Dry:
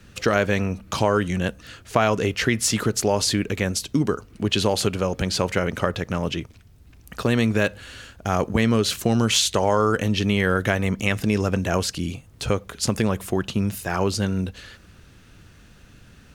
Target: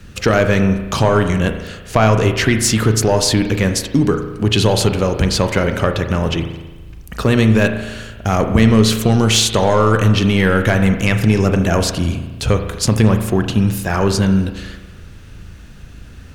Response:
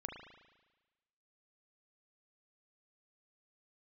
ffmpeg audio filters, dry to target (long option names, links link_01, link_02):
-filter_complex "[0:a]acontrast=85,asplit=2[link_01][link_02];[1:a]atrim=start_sample=2205,lowshelf=frequency=150:gain=11.5[link_03];[link_02][link_03]afir=irnorm=-1:irlink=0,volume=4dB[link_04];[link_01][link_04]amix=inputs=2:normalize=0,volume=-7dB"